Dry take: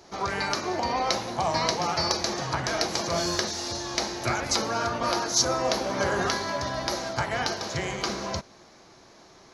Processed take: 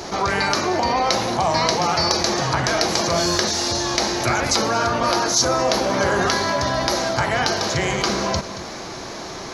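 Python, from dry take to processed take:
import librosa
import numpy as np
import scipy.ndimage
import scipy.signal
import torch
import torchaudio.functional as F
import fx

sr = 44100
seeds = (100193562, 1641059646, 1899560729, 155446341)

p1 = x + fx.echo_single(x, sr, ms=225, db=-24.0, dry=0)
p2 = fx.env_flatten(p1, sr, amount_pct=50)
y = p2 * librosa.db_to_amplitude(3.5)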